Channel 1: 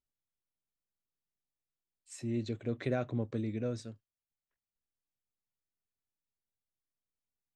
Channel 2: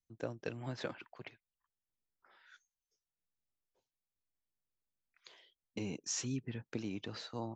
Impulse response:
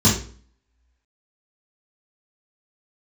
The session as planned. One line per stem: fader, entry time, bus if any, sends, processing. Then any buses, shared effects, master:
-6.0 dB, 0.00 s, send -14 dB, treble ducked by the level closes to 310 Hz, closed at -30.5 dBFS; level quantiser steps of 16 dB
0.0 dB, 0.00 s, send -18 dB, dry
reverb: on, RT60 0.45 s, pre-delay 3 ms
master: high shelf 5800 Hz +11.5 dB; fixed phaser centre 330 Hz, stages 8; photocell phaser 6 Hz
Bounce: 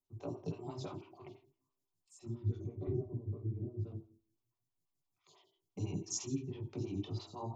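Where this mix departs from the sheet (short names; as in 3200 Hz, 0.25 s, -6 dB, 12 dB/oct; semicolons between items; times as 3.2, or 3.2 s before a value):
stem 1 -6.0 dB -> +3.0 dB; master: missing high shelf 5800 Hz +11.5 dB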